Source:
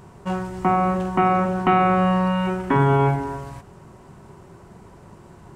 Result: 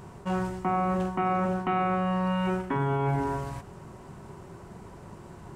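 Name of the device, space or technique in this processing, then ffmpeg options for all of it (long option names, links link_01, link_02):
compression on the reversed sound: -af "areverse,acompressor=threshold=-24dB:ratio=6,areverse"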